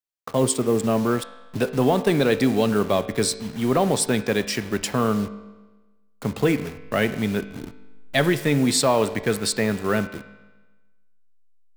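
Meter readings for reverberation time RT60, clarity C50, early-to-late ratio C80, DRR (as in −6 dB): 1.2 s, 13.0 dB, 15.0 dB, 10.5 dB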